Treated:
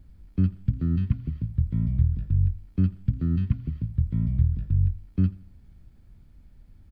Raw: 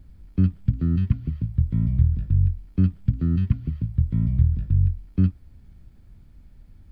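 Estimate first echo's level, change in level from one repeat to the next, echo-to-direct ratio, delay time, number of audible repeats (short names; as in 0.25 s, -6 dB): -21.0 dB, -8.5 dB, -20.5 dB, 84 ms, 2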